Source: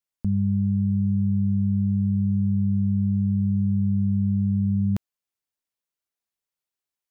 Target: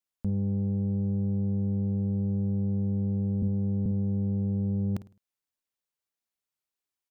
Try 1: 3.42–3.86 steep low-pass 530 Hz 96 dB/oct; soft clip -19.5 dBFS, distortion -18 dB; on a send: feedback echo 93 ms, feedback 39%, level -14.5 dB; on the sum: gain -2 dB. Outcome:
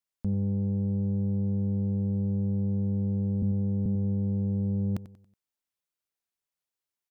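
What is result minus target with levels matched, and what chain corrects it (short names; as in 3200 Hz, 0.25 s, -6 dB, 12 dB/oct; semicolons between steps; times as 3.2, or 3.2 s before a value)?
echo 40 ms late
3.42–3.86 steep low-pass 530 Hz 96 dB/oct; soft clip -19.5 dBFS, distortion -18 dB; on a send: feedback echo 53 ms, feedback 39%, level -14.5 dB; on the sum: gain -2 dB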